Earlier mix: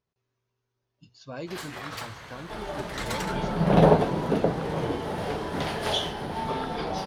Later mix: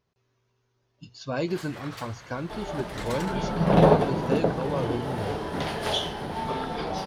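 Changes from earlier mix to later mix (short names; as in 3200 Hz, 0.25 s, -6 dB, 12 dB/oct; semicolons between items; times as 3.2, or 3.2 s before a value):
speech +8.5 dB; first sound -4.5 dB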